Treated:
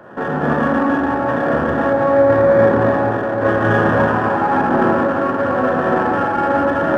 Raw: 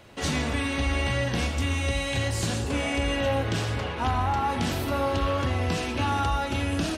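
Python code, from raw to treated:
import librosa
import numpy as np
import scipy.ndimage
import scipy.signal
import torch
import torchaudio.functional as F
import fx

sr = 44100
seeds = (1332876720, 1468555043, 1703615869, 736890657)

y = fx.envelope_flatten(x, sr, power=0.6)
y = scipy.signal.sosfilt(scipy.signal.butter(4, 130.0, 'highpass', fs=sr, output='sos'), y)
y = fx.peak_eq(y, sr, hz=450.0, db=3.5, octaves=0.72)
y = fx.over_compress(y, sr, threshold_db=-29.0, ratio=-0.5)
y = fx.brickwall_lowpass(y, sr, high_hz=1900.0)
y = fx.echo_alternate(y, sr, ms=147, hz=910.0, feedback_pct=82, wet_db=-3.5)
y = fx.rev_schroeder(y, sr, rt60_s=1.5, comb_ms=27, drr_db=-2.5)
y = fx.running_max(y, sr, window=3)
y = F.gain(torch.from_numpy(y), 9.0).numpy()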